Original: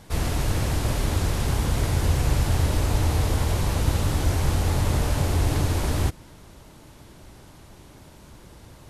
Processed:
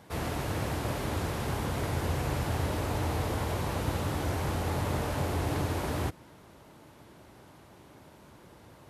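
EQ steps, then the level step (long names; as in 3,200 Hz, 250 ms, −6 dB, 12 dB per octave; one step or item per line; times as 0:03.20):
high-pass filter 79 Hz
low-shelf EQ 250 Hz −7 dB
parametric band 7,200 Hz −9 dB 2.6 octaves
−1.0 dB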